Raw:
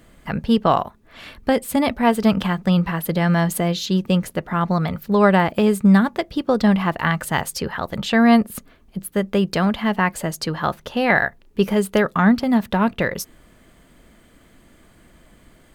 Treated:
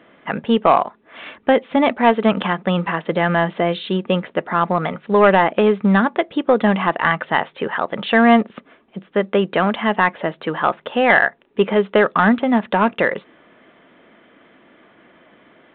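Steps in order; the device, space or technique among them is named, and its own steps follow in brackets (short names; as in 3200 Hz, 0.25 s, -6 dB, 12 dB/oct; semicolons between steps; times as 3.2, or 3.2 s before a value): telephone (BPF 300–3100 Hz; soft clip -8 dBFS, distortion -19 dB; gain +6 dB; µ-law 64 kbps 8000 Hz)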